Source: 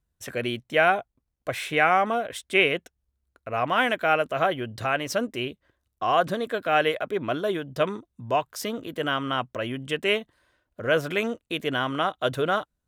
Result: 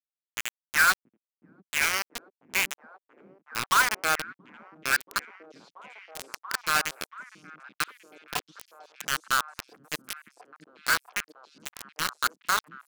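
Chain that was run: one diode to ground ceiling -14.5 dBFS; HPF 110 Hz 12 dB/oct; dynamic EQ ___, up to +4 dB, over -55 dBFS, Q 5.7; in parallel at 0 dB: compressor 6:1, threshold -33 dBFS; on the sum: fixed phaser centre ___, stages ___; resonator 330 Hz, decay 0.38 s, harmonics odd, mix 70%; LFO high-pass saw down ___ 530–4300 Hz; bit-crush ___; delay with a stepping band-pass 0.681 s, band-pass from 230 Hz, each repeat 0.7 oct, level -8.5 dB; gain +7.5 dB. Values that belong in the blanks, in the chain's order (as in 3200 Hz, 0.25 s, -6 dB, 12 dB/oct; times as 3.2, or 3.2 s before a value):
4100 Hz, 1600 Hz, 4, 0.7 Hz, 5-bit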